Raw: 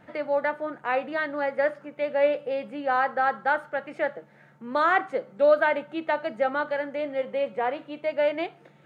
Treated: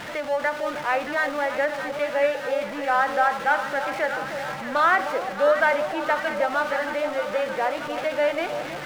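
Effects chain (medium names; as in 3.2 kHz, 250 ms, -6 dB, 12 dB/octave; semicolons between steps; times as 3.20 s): jump at every zero crossing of -31 dBFS; low-pass 2.3 kHz 6 dB/octave; tilt shelf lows -6 dB, about 780 Hz; on a send: echo whose repeats swap between lows and highs 312 ms, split 970 Hz, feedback 82%, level -8 dB; on the sum: endings held to a fixed fall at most 190 dB/s; trim +1 dB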